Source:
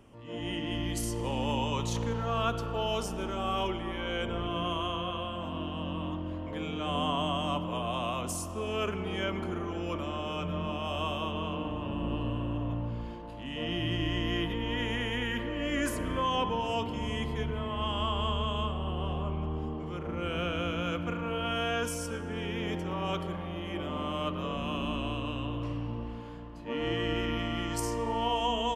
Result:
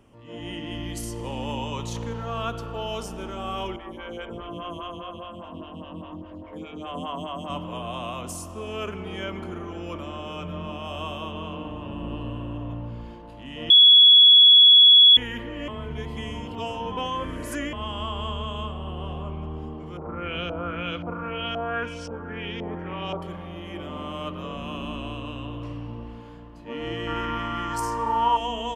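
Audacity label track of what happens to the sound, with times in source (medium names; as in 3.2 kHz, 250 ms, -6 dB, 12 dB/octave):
3.760000	7.500000	lamp-driven phase shifter 4.9 Hz
13.700000	15.170000	bleep 3.37 kHz -9 dBFS
15.680000	17.730000	reverse
19.970000	23.220000	LFO low-pass saw up 1.9 Hz 710–5000 Hz
27.070000	28.370000	high-order bell 1.2 kHz +12 dB 1.1 oct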